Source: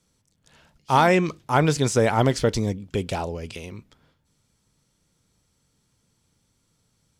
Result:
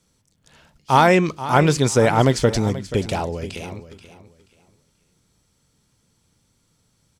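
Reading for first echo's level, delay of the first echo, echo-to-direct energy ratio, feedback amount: −14.0 dB, 482 ms, −13.5 dB, 24%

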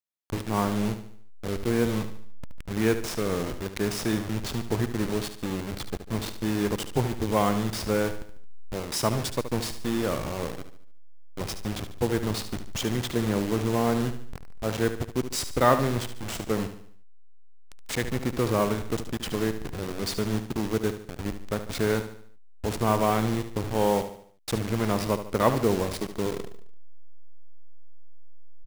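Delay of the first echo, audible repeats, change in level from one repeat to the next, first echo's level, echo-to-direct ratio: 73 ms, 4, −7.0 dB, −10.5 dB, −9.5 dB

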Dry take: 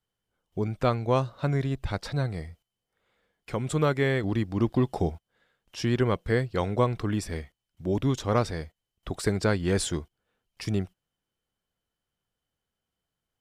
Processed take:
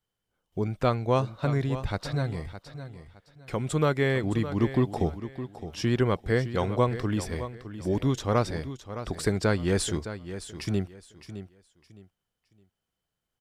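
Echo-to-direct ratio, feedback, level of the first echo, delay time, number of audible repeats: −11.5 dB, 26%, −12.0 dB, 613 ms, 2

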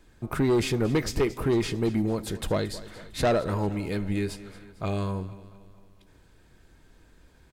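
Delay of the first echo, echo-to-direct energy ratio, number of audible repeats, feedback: 226 ms, −15.5 dB, 4, 52%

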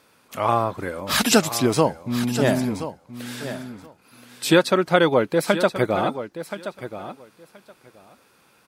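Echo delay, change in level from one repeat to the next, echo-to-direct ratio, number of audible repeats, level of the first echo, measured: 1,026 ms, −16.5 dB, −12.0 dB, 2, −12.0 dB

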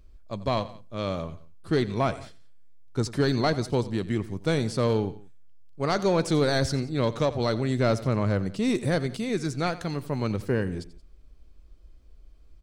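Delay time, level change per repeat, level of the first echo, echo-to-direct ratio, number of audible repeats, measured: 88 ms, −6.0 dB, −17.0 dB, −16.0 dB, 2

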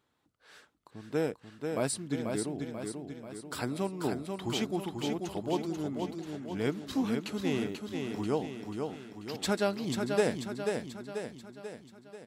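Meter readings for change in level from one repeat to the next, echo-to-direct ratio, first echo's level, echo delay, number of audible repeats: −5.5 dB, −3.5 dB, −5.0 dB, 488 ms, 6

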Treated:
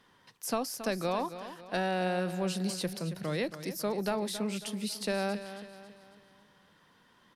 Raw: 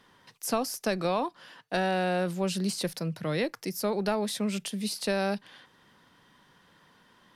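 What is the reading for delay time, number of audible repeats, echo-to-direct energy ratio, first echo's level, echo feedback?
274 ms, 4, −11.0 dB, −12.0 dB, 45%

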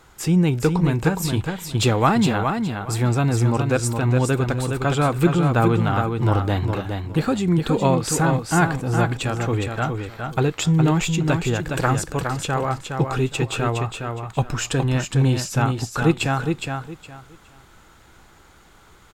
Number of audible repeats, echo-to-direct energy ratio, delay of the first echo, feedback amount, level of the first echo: 3, −5.5 dB, 414 ms, 22%, −5.5 dB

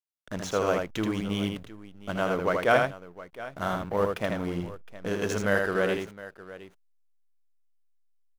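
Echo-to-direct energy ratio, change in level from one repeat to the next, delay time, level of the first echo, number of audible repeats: −4.0 dB, repeats not evenly spaced, 80 ms, −4.0 dB, 2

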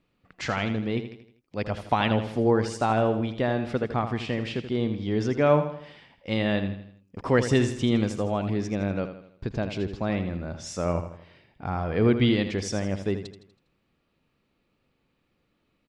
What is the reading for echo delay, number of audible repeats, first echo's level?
81 ms, 4, −10.0 dB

